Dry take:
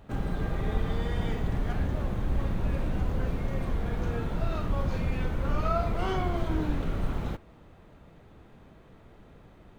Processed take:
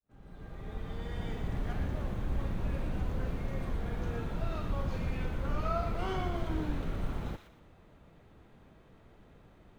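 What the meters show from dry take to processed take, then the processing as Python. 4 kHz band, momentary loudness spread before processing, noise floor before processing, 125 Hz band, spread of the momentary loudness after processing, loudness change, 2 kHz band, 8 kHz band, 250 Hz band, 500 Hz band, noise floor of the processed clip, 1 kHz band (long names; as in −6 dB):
−4.5 dB, 3 LU, −54 dBFS, −5.5 dB, 9 LU, −5.5 dB, −5.0 dB, can't be measured, −5.5 dB, −5.5 dB, −59 dBFS, −5.0 dB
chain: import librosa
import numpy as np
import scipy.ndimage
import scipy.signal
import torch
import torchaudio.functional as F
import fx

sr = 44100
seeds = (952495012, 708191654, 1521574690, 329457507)

y = fx.fade_in_head(x, sr, length_s=1.64)
y = fx.echo_wet_highpass(y, sr, ms=119, feedback_pct=32, hz=1600.0, wet_db=-6.0)
y = y * 10.0 ** (-5.0 / 20.0)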